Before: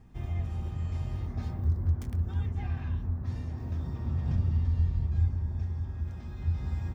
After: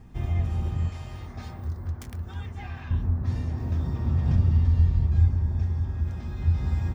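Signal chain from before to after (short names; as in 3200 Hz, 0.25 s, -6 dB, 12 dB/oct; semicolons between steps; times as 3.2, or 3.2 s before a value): 0.89–2.91 low shelf 480 Hz -11.5 dB; gain +6.5 dB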